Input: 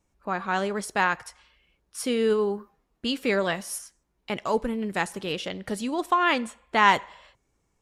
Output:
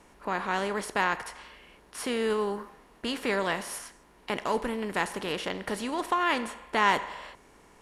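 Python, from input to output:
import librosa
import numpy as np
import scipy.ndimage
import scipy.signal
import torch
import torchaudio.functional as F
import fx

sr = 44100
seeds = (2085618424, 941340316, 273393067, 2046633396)

y = fx.bin_compress(x, sr, power=0.6)
y = y * librosa.db_to_amplitude(-6.5)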